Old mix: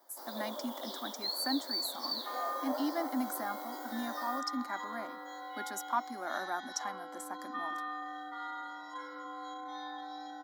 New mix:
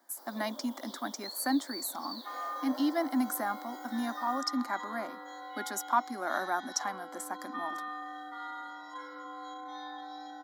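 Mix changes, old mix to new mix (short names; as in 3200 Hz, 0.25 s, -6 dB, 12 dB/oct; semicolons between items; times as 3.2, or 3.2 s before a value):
speech +5.0 dB; first sound -7.0 dB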